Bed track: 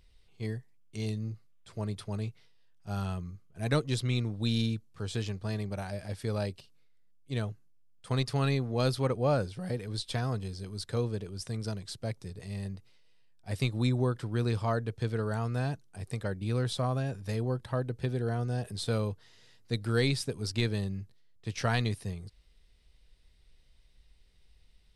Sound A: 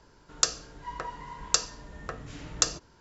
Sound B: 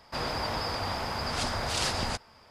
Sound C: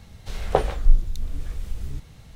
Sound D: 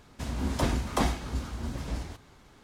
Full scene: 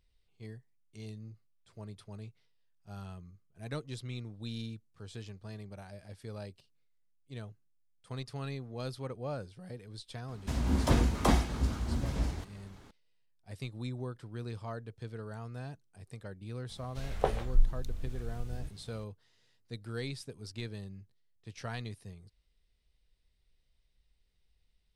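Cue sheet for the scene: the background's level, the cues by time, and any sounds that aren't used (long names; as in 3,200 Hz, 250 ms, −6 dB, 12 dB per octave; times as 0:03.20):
bed track −11 dB
0:10.28: mix in D −1.5 dB + low-shelf EQ 330 Hz +4 dB
0:16.69: mix in C −9 dB
not used: A, B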